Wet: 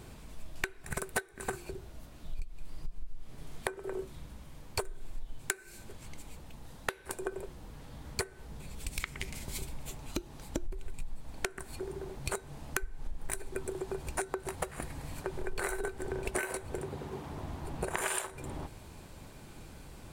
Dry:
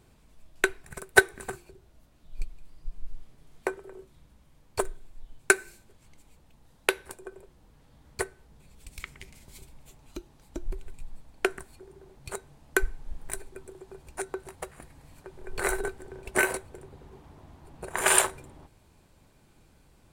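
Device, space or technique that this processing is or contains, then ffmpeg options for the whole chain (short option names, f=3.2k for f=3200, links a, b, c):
serial compression, leveller first: -filter_complex "[0:a]acompressor=threshold=-32dB:ratio=2.5,acompressor=threshold=-42dB:ratio=6,asettb=1/sr,asplit=3[a][b][c];[a]atrim=end=16.814[d];[b]atrim=start=16.81:end=17.32,asetpts=PTS-STARTPTS,afade=t=in:d=0.004:c=qsin,afade=t=out:st=0.506:d=0.004:c=qsin,highpass=92[e];[c]atrim=start=17.316[f];[d][e]acrossfade=d=0.004:c1=hsin:c2=qsin[g];[g][f]acrossfade=d=0.004:c1=qsin:c2=hsin,volume=10.5dB"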